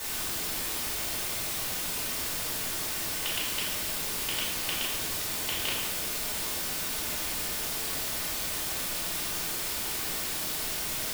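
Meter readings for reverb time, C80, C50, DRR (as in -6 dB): 1.1 s, 4.0 dB, 1.5 dB, -7.5 dB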